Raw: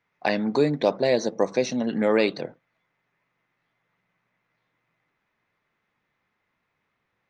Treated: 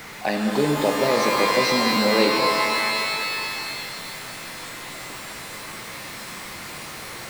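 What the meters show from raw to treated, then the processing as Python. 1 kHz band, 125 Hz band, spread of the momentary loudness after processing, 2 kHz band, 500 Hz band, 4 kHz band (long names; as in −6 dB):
+10.5 dB, +2.5 dB, 15 LU, +10.5 dB, +1.5 dB, +13.5 dB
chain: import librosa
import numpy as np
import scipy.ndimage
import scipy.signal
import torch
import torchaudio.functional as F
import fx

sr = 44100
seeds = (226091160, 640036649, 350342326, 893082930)

y = x + 0.5 * 10.0 ** (-31.5 / 20.0) * np.sign(x)
y = fx.rev_shimmer(y, sr, seeds[0], rt60_s=2.9, semitones=12, shimmer_db=-2, drr_db=2.0)
y = y * 10.0 ** (-2.0 / 20.0)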